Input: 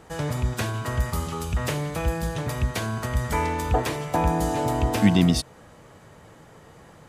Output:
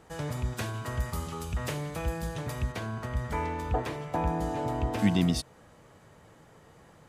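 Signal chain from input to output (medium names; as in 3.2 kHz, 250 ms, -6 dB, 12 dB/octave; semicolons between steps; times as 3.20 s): 2.72–4.99 s: treble shelf 4.6 kHz -11 dB; trim -6.5 dB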